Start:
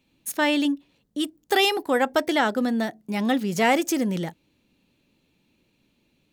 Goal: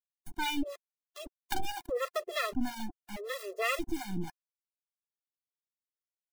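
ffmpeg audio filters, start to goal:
ffmpeg -i in.wav -filter_complex "[0:a]acrusher=bits=3:dc=4:mix=0:aa=0.000001,acrossover=split=620[link_01][link_02];[link_01]aeval=exprs='val(0)*(1-1/2+1/2*cos(2*PI*3.1*n/s))':channel_layout=same[link_03];[link_02]aeval=exprs='val(0)*(1-1/2-1/2*cos(2*PI*3.1*n/s))':channel_layout=same[link_04];[link_03][link_04]amix=inputs=2:normalize=0,afftfilt=real='re*gt(sin(2*PI*0.79*pts/sr)*(1-2*mod(floor(b*sr/1024/350),2)),0)':imag='im*gt(sin(2*PI*0.79*pts/sr)*(1-2*mod(floor(b*sr/1024/350),2)),0)':win_size=1024:overlap=0.75" out.wav

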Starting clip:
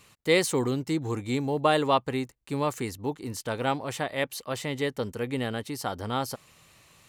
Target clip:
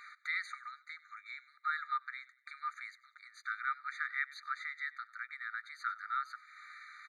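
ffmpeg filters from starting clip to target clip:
ffmpeg -i in.wav -filter_complex "[0:a]lowpass=1600,equalizer=frequency=120:width=1.9:gain=10,acompressor=threshold=-44dB:ratio=3,asplit=2[link_01][link_02];[link_02]asplit=3[link_03][link_04][link_05];[link_03]adelay=96,afreqshift=-48,volume=-20dB[link_06];[link_04]adelay=192,afreqshift=-96,volume=-27.7dB[link_07];[link_05]adelay=288,afreqshift=-144,volume=-35.5dB[link_08];[link_06][link_07][link_08]amix=inputs=3:normalize=0[link_09];[link_01][link_09]amix=inputs=2:normalize=0,afftfilt=real='re*eq(mod(floor(b*sr/1024/1200),2),1)':imag='im*eq(mod(floor(b*sr/1024/1200),2),1)':win_size=1024:overlap=0.75,volume=17.5dB" out.wav

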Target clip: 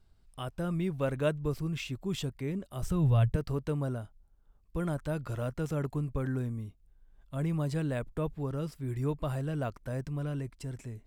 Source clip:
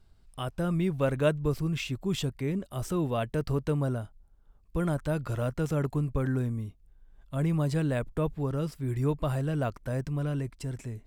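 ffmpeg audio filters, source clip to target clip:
ffmpeg -i in.wav -filter_complex "[0:a]asettb=1/sr,asplit=3[link_01][link_02][link_03];[link_01]atrim=end=2.834[link_04];[link_02]atrim=start=2.83:end=3.36,asetpts=PTS-STARTPTS,afade=type=in:duration=0.004:curve=qsin,afade=type=out:start_time=0.526:duration=0.004:curve=qsin,lowshelf=frequency=170:width_type=q:width=1.5:gain=14[link_05];[link_03]atrim=start=3.356[link_06];[link_04][link_05]acrossfade=duration=0.004:curve1=hsin:curve2=qsin[link_07];[link_07][link_06]acrossfade=duration=0.004:curve1=qsin:curve2=hsin,volume=-4dB" out.wav

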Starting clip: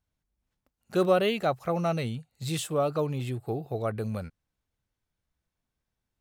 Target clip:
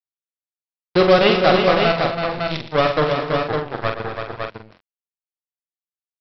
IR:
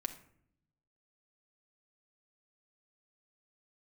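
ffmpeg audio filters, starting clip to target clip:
-filter_complex "[0:a]acontrast=85,aresample=11025,acrusher=bits=2:mix=0:aa=0.5,aresample=44100,asplit=2[link_01][link_02];[link_02]adelay=45,volume=-6dB[link_03];[link_01][link_03]amix=inputs=2:normalize=0,aecho=1:1:117|228|331|442|556:0.237|0.251|0.473|0.119|0.562,volume=1.5dB"

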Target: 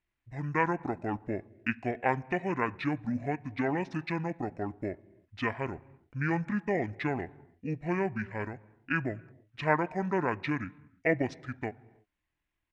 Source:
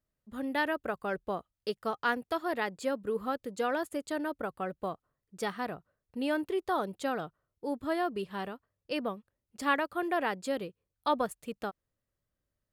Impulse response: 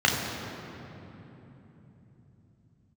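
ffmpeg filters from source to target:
-filter_complex "[0:a]asplit=2[link_01][link_02];[1:a]atrim=start_sample=2205,afade=type=out:start_time=0.39:duration=0.01,atrim=end_sample=17640[link_03];[link_02][link_03]afir=irnorm=-1:irlink=0,volume=-32.5dB[link_04];[link_01][link_04]amix=inputs=2:normalize=0,asetrate=24046,aresample=44100,atempo=1.83401,firequalizer=gain_entry='entry(680,0);entry(1900,14);entry(4700,-5);entry(9800,-9)':delay=0.05:min_phase=1"

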